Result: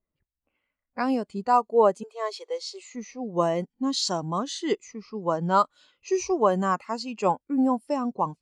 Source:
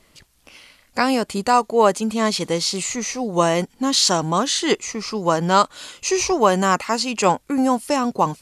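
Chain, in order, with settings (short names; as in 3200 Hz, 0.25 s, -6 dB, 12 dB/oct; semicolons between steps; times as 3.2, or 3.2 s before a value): low-pass opened by the level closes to 1700 Hz, open at -16.5 dBFS; 2.03–2.95 elliptic high-pass 390 Hz, stop band 40 dB; 7.31–7.96 notch 6500 Hz, Q 6.9; spectral expander 1.5:1; gain -6.5 dB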